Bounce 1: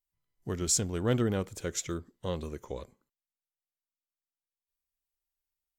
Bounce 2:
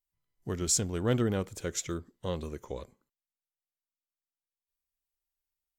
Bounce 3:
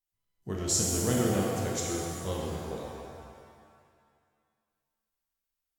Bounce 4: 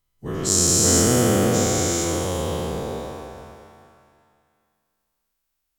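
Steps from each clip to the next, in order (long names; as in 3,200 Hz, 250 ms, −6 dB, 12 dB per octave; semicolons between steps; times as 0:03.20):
no processing that can be heard
reverb with rising layers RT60 2 s, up +7 semitones, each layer −8 dB, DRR −3 dB; level −3 dB
every bin's largest magnitude spread in time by 480 ms; level +3 dB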